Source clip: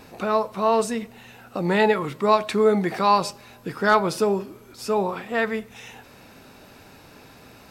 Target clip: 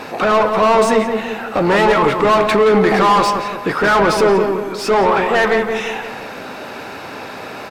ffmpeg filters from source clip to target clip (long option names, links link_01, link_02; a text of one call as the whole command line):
ffmpeg -i in.wav -filter_complex "[0:a]asplit=2[link_01][link_02];[link_02]highpass=frequency=720:poles=1,volume=29dB,asoftclip=type=tanh:threshold=-5dB[link_03];[link_01][link_03]amix=inputs=2:normalize=0,lowpass=frequency=1700:poles=1,volume=-6dB,asplit=2[link_04][link_05];[link_05]adelay=172,lowpass=frequency=1900:poles=1,volume=-5dB,asplit=2[link_06][link_07];[link_07]adelay=172,lowpass=frequency=1900:poles=1,volume=0.49,asplit=2[link_08][link_09];[link_09]adelay=172,lowpass=frequency=1900:poles=1,volume=0.49,asplit=2[link_10][link_11];[link_11]adelay=172,lowpass=frequency=1900:poles=1,volume=0.49,asplit=2[link_12][link_13];[link_13]adelay=172,lowpass=frequency=1900:poles=1,volume=0.49,asplit=2[link_14][link_15];[link_15]adelay=172,lowpass=frequency=1900:poles=1,volume=0.49[link_16];[link_04][link_06][link_08][link_10][link_12][link_14][link_16]amix=inputs=7:normalize=0" out.wav